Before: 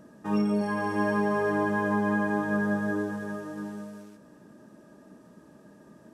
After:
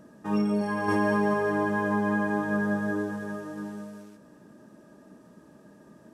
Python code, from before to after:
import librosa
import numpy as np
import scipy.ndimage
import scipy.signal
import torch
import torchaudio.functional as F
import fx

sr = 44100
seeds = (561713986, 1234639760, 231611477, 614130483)

y = fx.env_flatten(x, sr, amount_pct=100, at=(0.88, 1.34))